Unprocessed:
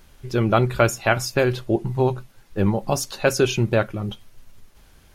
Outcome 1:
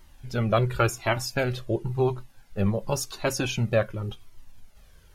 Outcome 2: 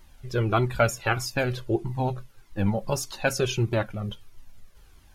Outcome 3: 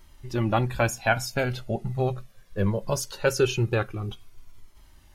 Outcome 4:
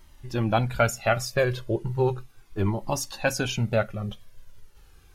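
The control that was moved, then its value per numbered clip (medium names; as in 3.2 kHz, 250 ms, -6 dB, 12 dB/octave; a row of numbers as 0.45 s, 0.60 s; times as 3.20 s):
Shepard-style flanger, rate: 0.92 Hz, 1.6 Hz, 0.21 Hz, 0.36 Hz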